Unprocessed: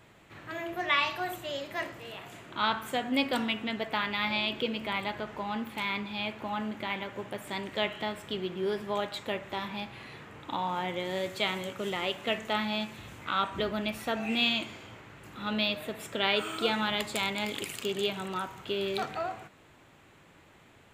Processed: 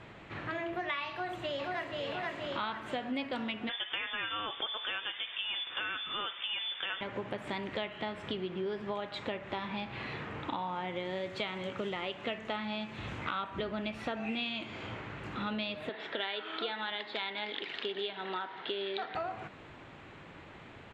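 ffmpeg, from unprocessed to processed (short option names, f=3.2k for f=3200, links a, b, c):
-filter_complex "[0:a]asplit=2[a][b];[b]afade=t=in:st=1.11:d=0.01,afade=t=out:st=1.99:d=0.01,aecho=0:1:480|960|1440|1920|2400|2880|3360|3840|4320:0.707946|0.424767|0.25486|0.152916|0.0917498|0.0550499|0.0330299|0.019818|0.0118908[c];[a][c]amix=inputs=2:normalize=0,asettb=1/sr,asplit=3[d][e][f];[d]atrim=end=3.694[g];[e]atrim=start=3.69:end=7.01,asetpts=PTS-STARTPTS,afade=t=in:d=0.004:c=qsin,afade=t=out:st=3.316:d=0.004:c=qsin,lowpass=f=3.1k:t=q:w=0.5098,lowpass=f=3.1k:t=q:w=0.6013,lowpass=f=3.1k:t=q:w=0.9,lowpass=f=3.1k:t=q:w=2.563,afreqshift=-3700[h];[f]atrim=start=7.006[i];[g][h]acrossfade=d=0.004:c1=hsin:c2=qsin[j];[j][i]acrossfade=d=0.004:c1=qsin:c2=hsin,asettb=1/sr,asplit=3[k][l][m];[k]atrim=end=15.894[n];[l]atrim=start=15.89:end=19.15,asetpts=PTS-STARTPTS,afade=t=in:d=0.004:c=qsin,afade=t=out:st=3.256:d=0.004:c=qsin,highpass=410,equalizer=f=560:t=q:w=4:g=-5,equalizer=f=1.2k:t=q:w=4:g=-6,equalizer=f=1.8k:t=q:w=4:g=4,equalizer=f=2.5k:t=q:w=4:g=-6,equalizer=f=3.7k:t=q:w=4:g=5,lowpass=f=4.2k:w=0.5412,lowpass=f=4.2k:w=1.3066[o];[m]atrim=start=19.146[p];[n][o]acrossfade=d=0.004:c1=hsin:c2=qsin[q];[q][p]acrossfade=d=0.004:c1=qsin:c2=hsin,lowpass=3.7k,acompressor=threshold=-41dB:ratio=6,volume=7dB"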